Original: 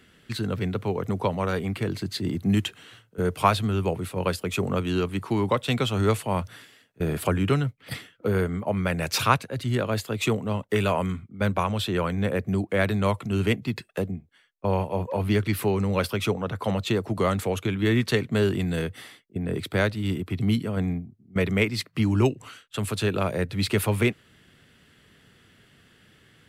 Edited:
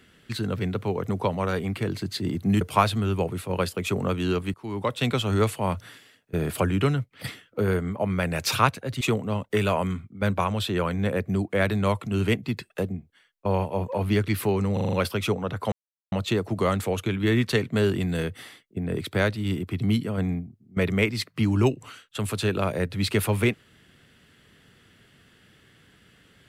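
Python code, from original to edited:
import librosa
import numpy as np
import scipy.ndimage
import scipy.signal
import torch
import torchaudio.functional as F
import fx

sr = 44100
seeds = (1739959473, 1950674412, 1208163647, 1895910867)

y = fx.edit(x, sr, fx.cut(start_s=2.61, length_s=0.67),
    fx.fade_in_from(start_s=5.21, length_s=0.49, floor_db=-21.5),
    fx.cut(start_s=9.68, length_s=0.52),
    fx.stutter(start_s=15.92, slice_s=0.04, count=6),
    fx.insert_silence(at_s=16.71, length_s=0.4), tone=tone)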